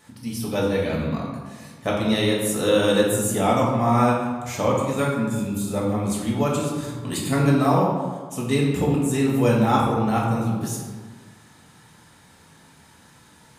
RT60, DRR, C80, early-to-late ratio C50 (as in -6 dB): 1.5 s, -4.0 dB, 4.0 dB, 1.5 dB